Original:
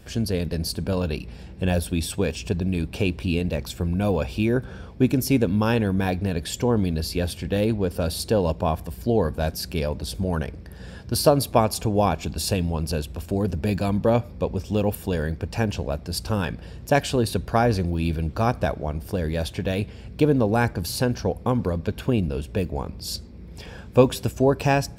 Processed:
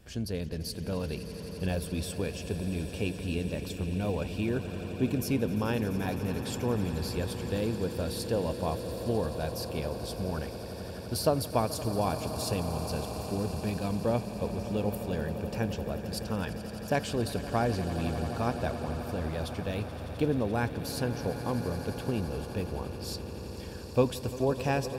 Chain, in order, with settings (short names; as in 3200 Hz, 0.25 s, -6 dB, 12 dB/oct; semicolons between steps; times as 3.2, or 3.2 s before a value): swelling echo 86 ms, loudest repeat 8, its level -16 dB; gain -9 dB